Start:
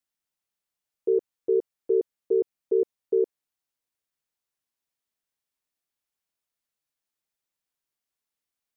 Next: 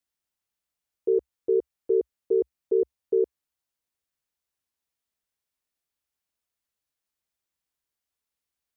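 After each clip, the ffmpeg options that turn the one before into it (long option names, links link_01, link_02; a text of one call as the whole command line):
ffmpeg -i in.wav -af "equalizer=frequency=64:width_type=o:width=0.69:gain=10" out.wav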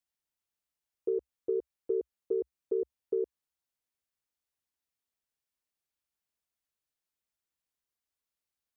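ffmpeg -i in.wav -af "acompressor=threshold=-22dB:ratio=6,volume=-4.5dB" out.wav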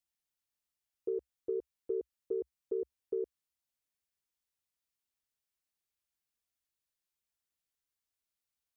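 ffmpeg -i in.wav -af "equalizer=frequency=540:width=0.33:gain=-4.5" out.wav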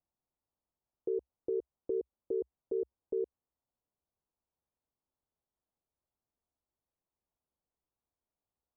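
ffmpeg -i in.wav -af "alimiter=level_in=9.5dB:limit=-24dB:level=0:latency=1:release=121,volume=-9.5dB,lowpass=frequency=1000:width=0.5412,lowpass=frequency=1000:width=1.3066,volume=7.5dB" out.wav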